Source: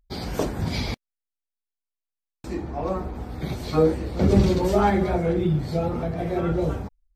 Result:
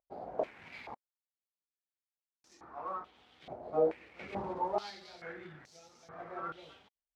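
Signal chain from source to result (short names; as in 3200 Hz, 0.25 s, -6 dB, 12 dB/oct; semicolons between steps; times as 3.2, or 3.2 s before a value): median filter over 15 samples; stepped band-pass 2.3 Hz 660–6000 Hz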